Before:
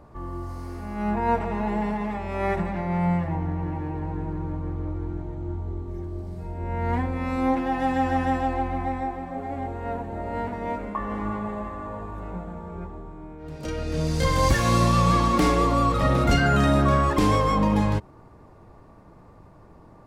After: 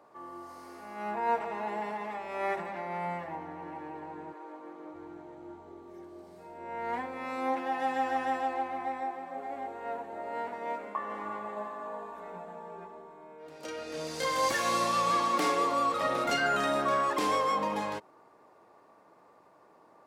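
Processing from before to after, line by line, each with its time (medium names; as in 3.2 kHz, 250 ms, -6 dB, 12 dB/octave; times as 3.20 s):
4.32–4.93 s: high-pass 400 Hz -> 170 Hz 24 dB/octave
11.56–13.47 s: comb 4.6 ms
whole clip: high-pass 450 Hz 12 dB/octave; trim -4 dB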